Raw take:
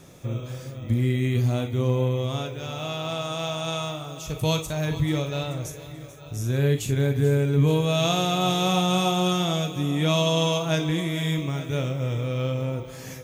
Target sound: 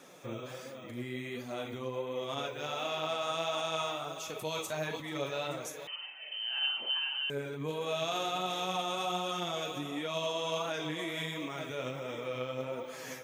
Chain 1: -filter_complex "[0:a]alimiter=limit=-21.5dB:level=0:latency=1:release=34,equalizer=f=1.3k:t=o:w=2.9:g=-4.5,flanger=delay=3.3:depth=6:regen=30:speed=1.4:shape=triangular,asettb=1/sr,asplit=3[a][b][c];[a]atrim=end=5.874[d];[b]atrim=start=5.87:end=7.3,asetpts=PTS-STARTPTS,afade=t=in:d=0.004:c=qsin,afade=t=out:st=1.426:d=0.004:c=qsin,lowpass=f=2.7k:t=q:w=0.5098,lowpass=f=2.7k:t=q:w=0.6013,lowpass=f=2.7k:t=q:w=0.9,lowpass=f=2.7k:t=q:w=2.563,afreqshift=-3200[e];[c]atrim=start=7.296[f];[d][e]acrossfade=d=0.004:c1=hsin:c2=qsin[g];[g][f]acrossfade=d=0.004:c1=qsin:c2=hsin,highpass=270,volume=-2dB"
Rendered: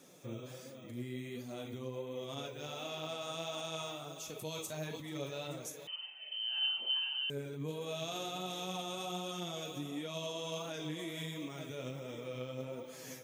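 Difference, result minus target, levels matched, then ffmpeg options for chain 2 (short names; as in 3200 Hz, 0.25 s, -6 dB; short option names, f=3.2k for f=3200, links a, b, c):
1000 Hz band -5.0 dB
-filter_complex "[0:a]alimiter=limit=-21.5dB:level=0:latency=1:release=34,equalizer=f=1.3k:t=o:w=2.9:g=6,flanger=delay=3.3:depth=6:regen=30:speed=1.4:shape=triangular,asettb=1/sr,asplit=3[a][b][c];[a]atrim=end=5.874[d];[b]atrim=start=5.87:end=7.3,asetpts=PTS-STARTPTS,afade=t=in:d=0.004:c=qsin,afade=t=out:st=1.426:d=0.004:c=qsin,lowpass=f=2.7k:t=q:w=0.5098,lowpass=f=2.7k:t=q:w=0.6013,lowpass=f=2.7k:t=q:w=0.9,lowpass=f=2.7k:t=q:w=2.563,afreqshift=-3200[e];[c]atrim=start=7.296[f];[d][e]acrossfade=d=0.004:c1=hsin:c2=qsin[g];[g][f]acrossfade=d=0.004:c1=qsin:c2=hsin,highpass=270,volume=-2dB"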